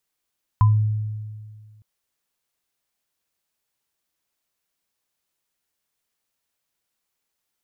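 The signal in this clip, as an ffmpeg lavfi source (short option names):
-f lavfi -i "aevalsrc='0.299*pow(10,-3*t/1.9)*sin(2*PI*107*t)+0.133*pow(10,-3*t/0.21)*sin(2*PI*1010*t)':d=1.21:s=44100"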